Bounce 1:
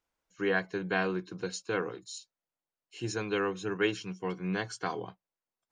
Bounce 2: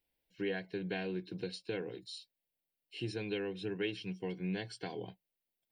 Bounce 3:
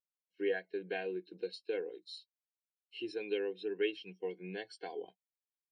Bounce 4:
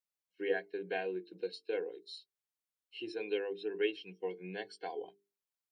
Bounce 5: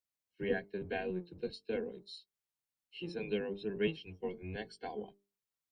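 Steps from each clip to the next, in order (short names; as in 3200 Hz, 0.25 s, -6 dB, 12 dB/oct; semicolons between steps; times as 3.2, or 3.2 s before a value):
high shelf 6300 Hz +8.5 dB; compressor 2:1, threshold -37 dBFS, peak gain reduction 8.5 dB; fixed phaser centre 2900 Hz, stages 4; gain +1 dB
HPF 390 Hz 12 dB/oct; spectral expander 1.5:1; gain +3.5 dB
notches 50/100/150/200/250/300/350/400/450 Hz; dynamic EQ 910 Hz, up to +5 dB, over -51 dBFS, Q 1.2
octaver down 1 oct, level +2 dB; gain -1.5 dB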